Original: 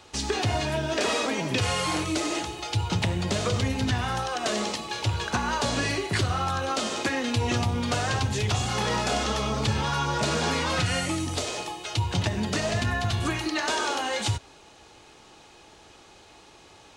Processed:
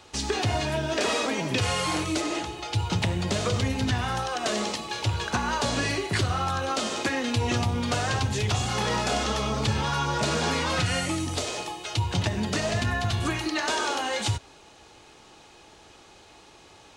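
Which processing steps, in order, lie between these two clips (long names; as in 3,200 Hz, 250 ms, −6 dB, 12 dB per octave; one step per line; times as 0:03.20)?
0:02.21–0:02.74: high-shelf EQ 5,700 Hz −6.5 dB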